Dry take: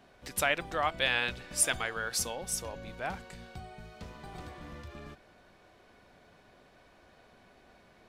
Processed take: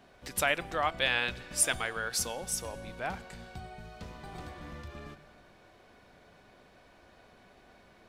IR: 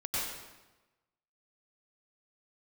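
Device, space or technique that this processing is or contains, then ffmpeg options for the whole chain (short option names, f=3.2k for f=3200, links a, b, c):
compressed reverb return: -filter_complex "[0:a]asplit=2[a][b];[1:a]atrim=start_sample=2205[c];[b][c]afir=irnorm=-1:irlink=0,acompressor=threshold=-37dB:ratio=6,volume=-15.5dB[d];[a][d]amix=inputs=2:normalize=0"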